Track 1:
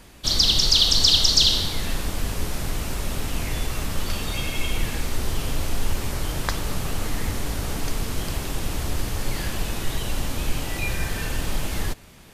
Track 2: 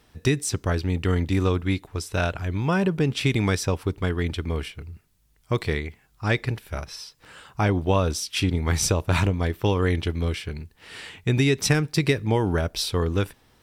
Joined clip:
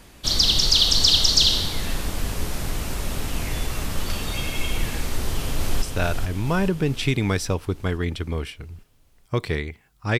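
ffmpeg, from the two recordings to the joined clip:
-filter_complex "[0:a]apad=whole_dur=10.19,atrim=end=10.19,atrim=end=5.822[a];[1:a]atrim=start=1.998:end=6.37[b];[a][b]acrossfade=d=0.004:c1=hsin:c2=hsin,asplit=2[c][d];[d]afade=t=in:st=5.16:d=0.01,afade=t=out:st=5.82:d=0.01,aecho=0:1:430|860|1290|1720|2150|2580|3010|3440:0.530884|0.318531|0.191118|0.114671|0.0688026|0.0412816|0.0247689|0.0148614[e];[c][e]amix=inputs=2:normalize=0"

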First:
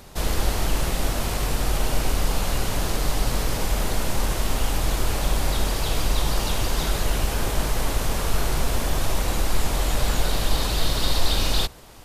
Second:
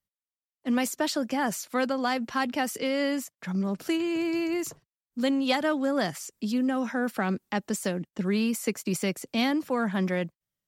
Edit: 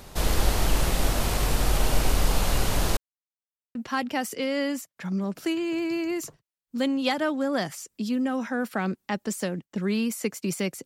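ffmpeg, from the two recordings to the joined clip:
-filter_complex "[0:a]apad=whole_dur=10.85,atrim=end=10.85,asplit=2[a][b];[a]atrim=end=2.97,asetpts=PTS-STARTPTS,afade=t=out:st=2.966:d=0.004:c=hsin[c];[b]atrim=start=2.97:end=3.75,asetpts=PTS-STARTPTS,volume=0[d];[1:a]atrim=start=2.18:end=9.28,asetpts=PTS-STARTPTS,afade=t=in:d=0.004:c=hsin[e];[c][d][e]concat=n=3:v=0:a=1"

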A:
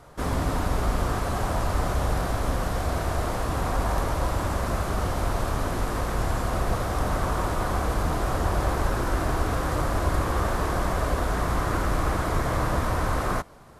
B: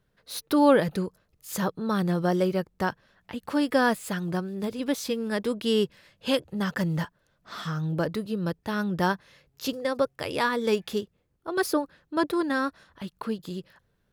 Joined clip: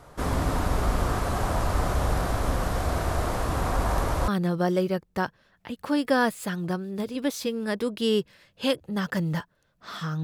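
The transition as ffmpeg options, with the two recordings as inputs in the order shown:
-filter_complex "[0:a]apad=whole_dur=10.23,atrim=end=10.23,atrim=end=4.282[a];[1:a]atrim=start=1.918:end=7.87[b];[a][b]acrossfade=d=0.004:c1=hsin:c2=hsin"

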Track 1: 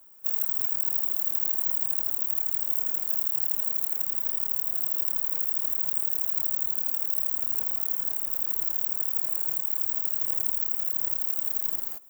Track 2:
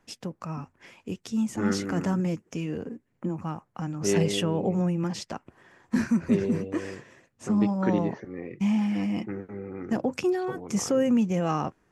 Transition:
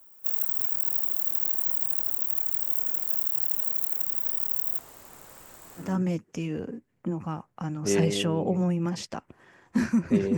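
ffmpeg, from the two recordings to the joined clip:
-filter_complex "[0:a]asettb=1/sr,asplit=3[a][b][c];[a]atrim=end=4.784[d];[b]atrim=start=4.78:end=5.96,asetpts=PTS-STARTPTS,afade=t=in:d=0.004:c=qsin,afade=t=out:st=1.176:d=0.004:c=qsin,lowpass=10k[e];[c]atrim=start=5.956[f];[d][e]acrossfade=d=0.004:c1=hsin:c2=qsin[g];[g][f]acrossfade=d=0.004:c1=qsin:c2=hsin,apad=whole_dur=10.37,atrim=end=10.37,atrim=end=5.96,asetpts=PTS-STARTPTS[h];[1:a]atrim=start=1.94:end=6.55,asetpts=PTS-STARTPTS[i];[h][i]acrossfade=d=0.2:c1=tri:c2=tri"

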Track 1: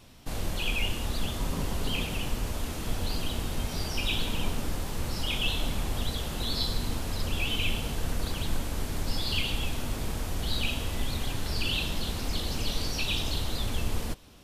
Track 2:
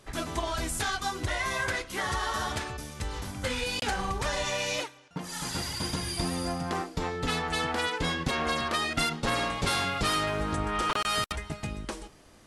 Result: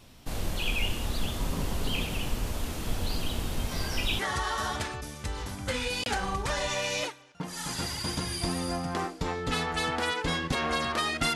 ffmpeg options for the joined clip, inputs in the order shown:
-filter_complex "[1:a]asplit=2[a][b];[0:a]apad=whole_dur=11.35,atrim=end=11.35,atrim=end=4.192[c];[b]atrim=start=1.948:end=9.11[d];[a]atrim=start=1.47:end=1.95,asetpts=PTS-STARTPTS,volume=-12.5dB,afade=t=in:d=0.004:c=hsin,afade=t=out:st=0.476:d=0.004:c=hsin,adelay=3710[e];[c][d]acrossfade=d=0.004:c1=hsin:c2=hsin[f];[f][e]amix=inputs=2:normalize=0"

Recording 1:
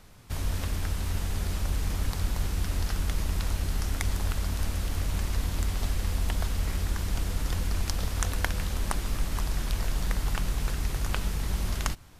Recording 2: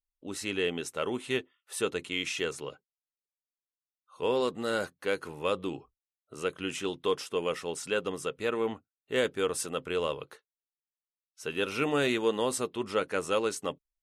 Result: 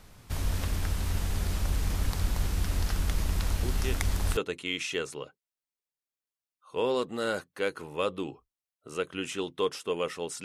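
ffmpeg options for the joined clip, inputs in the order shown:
-filter_complex "[1:a]asplit=2[a][b];[0:a]apad=whole_dur=10.44,atrim=end=10.44,atrim=end=4.372[c];[b]atrim=start=1.828:end=7.9[d];[a]atrim=start=1.09:end=1.83,asetpts=PTS-STARTPTS,volume=-6dB,afade=t=in:d=0.004:c=hsin,afade=t=out:st=0.736:d=0.004:c=hsin,adelay=3630[e];[c][d]acrossfade=d=0.004:c1=hsin:c2=hsin[f];[f][e]amix=inputs=2:normalize=0"

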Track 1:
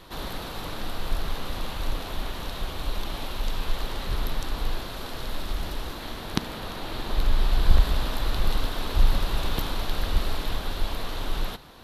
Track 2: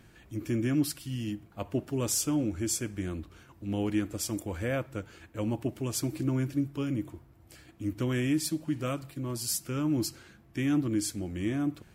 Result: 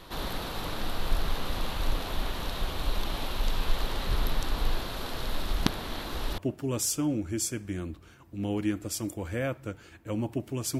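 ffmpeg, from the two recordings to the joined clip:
-filter_complex "[0:a]apad=whole_dur=10.79,atrim=end=10.79,asplit=2[a][b];[a]atrim=end=5.662[c];[b]atrim=start=5.658:end=6.382,asetpts=PTS-STARTPTS,areverse[d];[1:a]atrim=start=1.668:end=6.08[e];[c][d]acrossfade=d=0.004:c1=hsin:c2=hsin[f];[f][e]acrossfade=d=0.004:c1=hsin:c2=hsin"

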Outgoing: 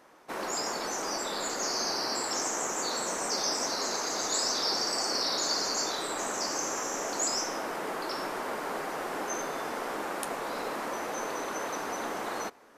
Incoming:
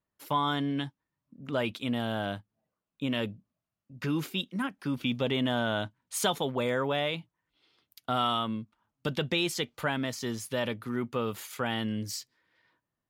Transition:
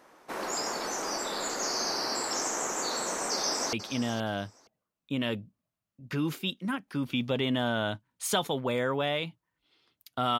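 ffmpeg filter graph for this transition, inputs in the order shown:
-filter_complex "[0:a]apad=whole_dur=10.39,atrim=end=10.39,atrim=end=3.732[a];[1:a]atrim=start=1.638:end=8.3[b];[a][b]acrossfade=d=0.004:c1=hsin:c2=hsin,asplit=2[c][d];[d]afade=t=in:st=3.32:d=0.01,afade=t=out:st=3.73:d=0.01,aecho=0:1:470|940:0.237137|0.0355706[e];[c][e]amix=inputs=2:normalize=0"

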